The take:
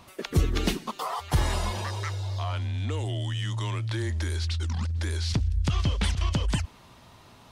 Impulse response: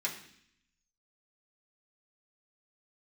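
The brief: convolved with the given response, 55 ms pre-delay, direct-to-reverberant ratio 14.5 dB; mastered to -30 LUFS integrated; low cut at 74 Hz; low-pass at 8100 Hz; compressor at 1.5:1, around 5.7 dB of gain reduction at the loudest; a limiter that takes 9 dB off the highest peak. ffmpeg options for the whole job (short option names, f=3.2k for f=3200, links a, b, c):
-filter_complex "[0:a]highpass=74,lowpass=8.1k,acompressor=threshold=-36dB:ratio=1.5,alimiter=level_in=2.5dB:limit=-24dB:level=0:latency=1,volume=-2.5dB,asplit=2[a][b];[1:a]atrim=start_sample=2205,adelay=55[c];[b][c]afir=irnorm=-1:irlink=0,volume=-18.5dB[d];[a][d]amix=inputs=2:normalize=0,volume=5.5dB"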